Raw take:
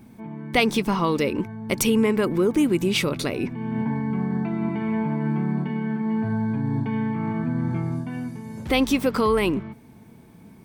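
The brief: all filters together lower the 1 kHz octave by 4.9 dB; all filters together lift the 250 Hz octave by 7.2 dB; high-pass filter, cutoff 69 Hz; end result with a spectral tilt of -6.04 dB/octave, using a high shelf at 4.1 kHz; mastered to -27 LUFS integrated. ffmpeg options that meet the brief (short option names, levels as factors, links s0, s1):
-af "highpass=69,equalizer=f=250:t=o:g=9,equalizer=f=1000:t=o:g=-7,highshelf=f=4100:g=5,volume=0.398"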